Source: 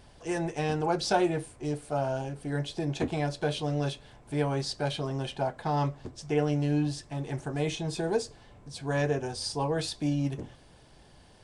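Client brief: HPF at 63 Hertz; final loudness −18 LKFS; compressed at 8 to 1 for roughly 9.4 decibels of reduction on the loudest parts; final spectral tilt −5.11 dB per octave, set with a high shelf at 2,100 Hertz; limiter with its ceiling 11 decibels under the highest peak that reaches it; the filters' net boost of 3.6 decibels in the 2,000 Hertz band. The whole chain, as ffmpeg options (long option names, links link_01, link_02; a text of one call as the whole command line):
ffmpeg -i in.wav -af "highpass=63,equalizer=frequency=2000:width_type=o:gain=6.5,highshelf=frequency=2100:gain=-3,acompressor=threshold=-30dB:ratio=8,volume=22.5dB,alimiter=limit=-9dB:level=0:latency=1" out.wav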